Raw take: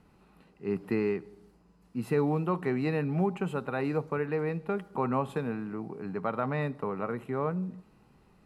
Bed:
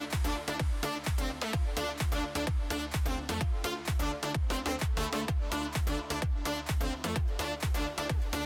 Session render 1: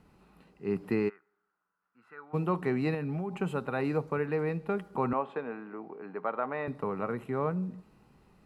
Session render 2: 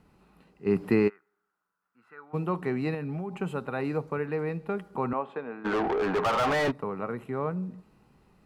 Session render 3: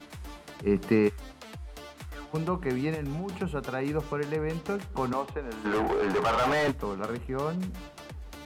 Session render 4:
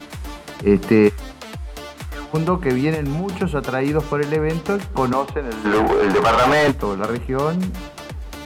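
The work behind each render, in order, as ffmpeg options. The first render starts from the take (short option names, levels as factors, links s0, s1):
-filter_complex "[0:a]asplit=3[s0][s1][s2];[s0]afade=t=out:st=1.08:d=0.02[s3];[s1]bandpass=f=1400:t=q:w=6.8,afade=t=in:st=1.08:d=0.02,afade=t=out:st=2.33:d=0.02[s4];[s2]afade=t=in:st=2.33:d=0.02[s5];[s3][s4][s5]amix=inputs=3:normalize=0,asettb=1/sr,asplit=3[s6][s7][s8];[s6]atrim=end=2.944[s9];[s7]atrim=start=2.94:end=3.4,asetpts=PTS-STARTPTS,afade=t=in:d=0.004:c=qsin,afade=t=out:st=0.456:d=0.004:c=qsin,acompressor=threshold=0.0316:ratio=6:attack=3.2:release=140:knee=1:detection=peak[s10];[s8]atrim=start=3.396[s11];[s9][s10]acrossfade=d=0.004:c1=hsin:c2=qsin[s12];[s12][s11]acrossfade=d=0.004:c1=qsin:c2=hsin,asettb=1/sr,asplit=3[s13][s14][s15];[s13]atrim=end=5.134[s16];[s14]atrim=start=5.13:end=6.68,asetpts=PTS-STARTPTS,afade=t=in:d=0.004:c=qsin,afade=t=out:st=1.546:d=0.004:c=qsin,highpass=370,lowpass=2400[s17];[s15]atrim=start=6.676[s18];[s16][s17]acrossfade=d=0.004:c1=hsin:c2=qsin[s19];[s19][s18]acrossfade=d=0.004:c1=qsin:c2=hsin"
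-filter_complex "[0:a]asettb=1/sr,asplit=3[s0][s1][s2];[s0]atrim=end=0.664[s3];[s1]atrim=start=0.66:end=1.08,asetpts=PTS-STARTPTS,afade=t=in:d=0.004:c=qsin,afade=t=out:st=0.416:d=0.004:c=qsin,acontrast=56[s4];[s2]atrim=start=1.076[s5];[s3][s4]acrossfade=d=0.004:c1=hsin:c2=qsin[s6];[s6][s5]acrossfade=d=0.004:c1=qsin:c2=hsin,asplit=3[s7][s8][s9];[s7]afade=t=out:st=5.64:d=0.02[s10];[s8]asplit=2[s11][s12];[s12]highpass=f=720:p=1,volume=63.1,asoftclip=type=tanh:threshold=0.126[s13];[s11][s13]amix=inputs=2:normalize=0,lowpass=f=2300:p=1,volume=0.501,afade=t=in:st=5.64:d=0.02,afade=t=out:st=6.7:d=0.02[s14];[s9]afade=t=in:st=6.7:d=0.02[s15];[s10][s14][s15]amix=inputs=3:normalize=0"
-filter_complex "[1:a]volume=0.266[s0];[0:a][s0]amix=inputs=2:normalize=0"
-af "volume=3.35,alimiter=limit=0.708:level=0:latency=1"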